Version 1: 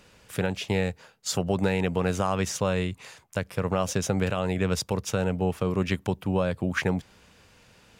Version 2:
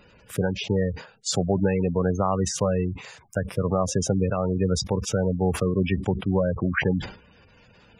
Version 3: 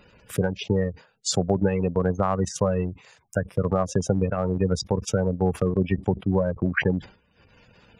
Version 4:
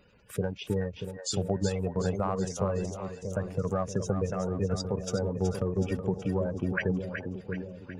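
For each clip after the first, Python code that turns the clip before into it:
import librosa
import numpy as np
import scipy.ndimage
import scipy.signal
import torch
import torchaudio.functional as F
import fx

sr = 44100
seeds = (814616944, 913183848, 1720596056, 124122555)

y1 = fx.spec_gate(x, sr, threshold_db=-15, keep='strong')
y1 = fx.sustainer(y1, sr, db_per_s=130.0)
y1 = y1 * librosa.db_to_amplitude(3.0)
y2 = fx.transient(y1, sr, attack_db=2, sustain_db=-11)
y3 = fx.spec_quant(y2, sr, step_db=15)
y3 = fx.echo_split(y3, sr, split_hz=560.0, low_ms=633, high_ms=373, feedback_pct=52, wet_db=-7.0)
y3 = y3 * librosa.db_to_amplitude(-6.5)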